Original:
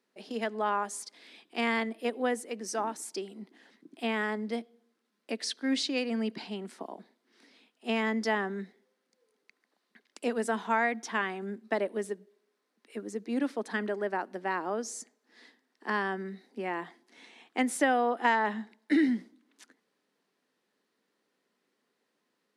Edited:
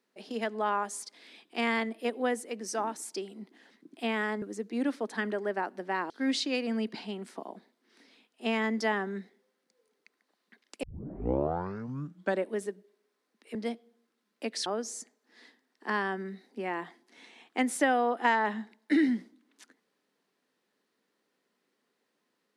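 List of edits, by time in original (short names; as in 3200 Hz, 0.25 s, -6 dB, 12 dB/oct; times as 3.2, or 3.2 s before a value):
4.42–5.53 swap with 12.98–14.66
10.26 tape start 1.66 s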